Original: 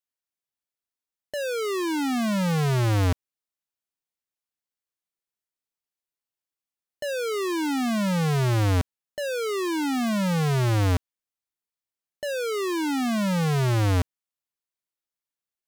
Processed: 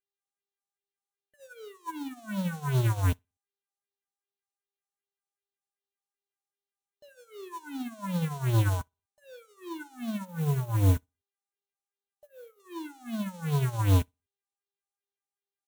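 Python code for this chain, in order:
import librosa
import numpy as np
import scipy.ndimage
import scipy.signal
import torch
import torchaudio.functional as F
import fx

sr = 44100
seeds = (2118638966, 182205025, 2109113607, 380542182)

y = fx.curve_eq(x, sr, hz=(620.0, 7700.0, 14000.0), db=(0, -17, 6), at=(10.25, 12.6))
y = fx.dmg_buzz(y, sr, base_hz=400.0, harmonics=28, level_db=-56.0, tilt_db=-3, odd_only=False)
y = fx.phaser_stages(y, sr, stages=4, low_hz=280.0, high_hz=2000.0, hz=2.6, feedback_pct=35)
y = fx.small_body(y, sr, hz=(1000.0, 1500.0), ring_ms=80, db=13)
y = fx.mod_noise(y, sr, seeds[0], snr_db=20)
y = fx.peak_eq(y, sr, hz=4900.0, db=-9.0, octaves=0.24)
y = fx.echo_feedback(y, sr, ms=61, feedback_pct=46, wet_db=-14.0)
y = fx.upward_expand(y, sr, threshold_db=-44.0, expansion=2.5)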